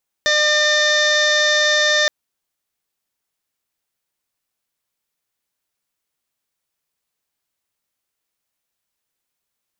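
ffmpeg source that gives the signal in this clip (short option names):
-f lavfi -i "aevalsrc='0.1*sin(2*PI*602*t)+0.0355*sin(2*PI*1204*t)+0.15*sin(2*PI*1806*t)+0.0188*sin(2*PI*2408*t)+0.0106*sin(2*PI*3010*t)+0.106*sin(2*PI*3612*t)+0.0355*sin(2*PI*4214*t)+0.0355*sin(2*PI*4816*t)+0.0398*sin(2*PI*5418*t)+0.0422*sin(2*PI*6020*t)+0.0141*sin(2*PI*6622*t)+0.015*sin(2*PI*7224*t)':d=1.82:s=44100"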